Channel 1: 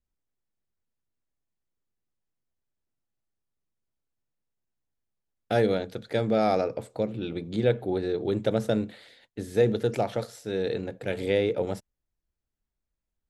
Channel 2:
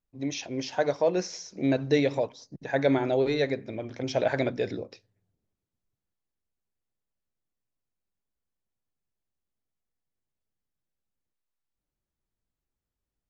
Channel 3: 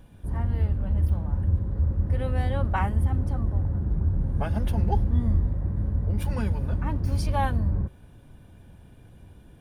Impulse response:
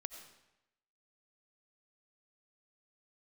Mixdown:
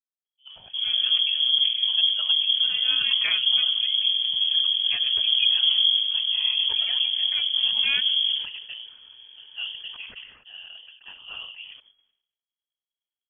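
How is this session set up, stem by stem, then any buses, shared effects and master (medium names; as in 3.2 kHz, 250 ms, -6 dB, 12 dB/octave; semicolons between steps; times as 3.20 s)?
-14.0 dB, 0.00 s, no send, gate with hold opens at -41 dBFS; whisper effect
-9.0 dB, 0.25 s, no send, square tremolo 9.8 Hz, depth 65%, duty 25%; auto duck -12 dB, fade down 1.85 s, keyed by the first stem
-1.0 dB, 0.50 s, no send, none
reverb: none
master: frequency inversion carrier 3.3 kHz; decay stretcher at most 81 dB/s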